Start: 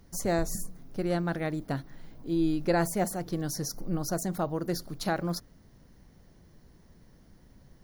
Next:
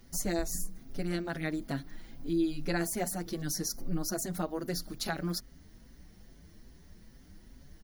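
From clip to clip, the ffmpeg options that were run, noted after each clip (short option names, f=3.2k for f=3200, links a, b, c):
-filter_complex "[0:a]equalizer=f=125:t=o:w=1:g=-8,equalizer=f=500:t=o:w=1:g=-6,equalizer=f=1k:t=o:w=1:g=-6,asplit=2[a][b];[b]acompressor=threshold=-39dB:ratio=6,volume=3dB[c];[a][c]amix=inputs=2:normalize=0,asplit=2[d][e];[e]adelay=5.7,afreqshift=2.4[f];[d][f]amix=inputs=2:normalize=1"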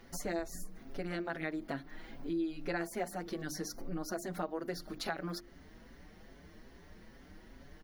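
-af "bass=f=250:g=-10,treble=f=4k:g=-14,bandreject=f=50:t=h:w=6,bandreject=f=100:t=h:w=6,bandreject=f=150:t=h:w=6,bandreject=f=200:t=h:w=6,bandreject=f=250:t=h:w=6,bandreject=f=300:t=h:w=6,bandreject=f=350:t=h:w=6,acompressor=threshold=-48dB:ratio=2,volume=7.5dB"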